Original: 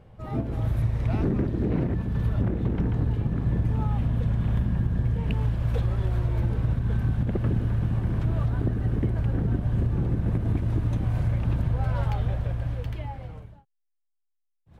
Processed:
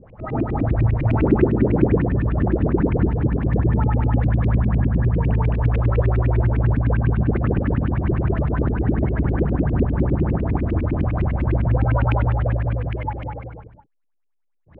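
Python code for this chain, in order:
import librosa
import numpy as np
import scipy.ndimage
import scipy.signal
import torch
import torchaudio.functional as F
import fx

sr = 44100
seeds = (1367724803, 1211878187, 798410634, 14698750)

y = x + 10.0 ** (-4.0 / 20.0) * np.pad(x, (int(215 * sr / 1000.0), 0))[:len(x)]
y = fx.filter_lfo_lowpass(y, sr, shape='saw_up', hz=9.9, low_hz=230.0, high_hz=2700.0, q=6.8)
y = F.gain(torch.from_numpy(y), 3.0).numpy()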